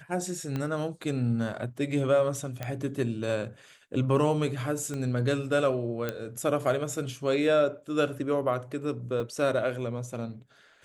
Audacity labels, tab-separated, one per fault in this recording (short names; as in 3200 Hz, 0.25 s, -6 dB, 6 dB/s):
0.560000	0.560000	pop -19 dBFS
2.630000	2.630000	pop -18 dBFS
4.940000	4.940000	pop -23 dBFS
6.090000	6.090000	pop -16 dBFS
9.200000	9.200000	gap 2.8 ms